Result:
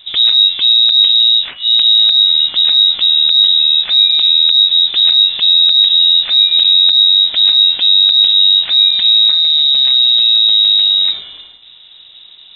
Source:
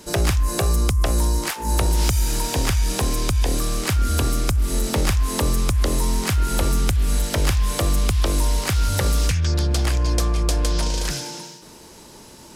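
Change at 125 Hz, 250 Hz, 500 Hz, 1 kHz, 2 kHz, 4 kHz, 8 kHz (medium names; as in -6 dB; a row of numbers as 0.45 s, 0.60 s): under -30 dB, under -20 dB, under -15 dB, under -10 dB, -1.0 dB, +26.5 dB, under -40 dB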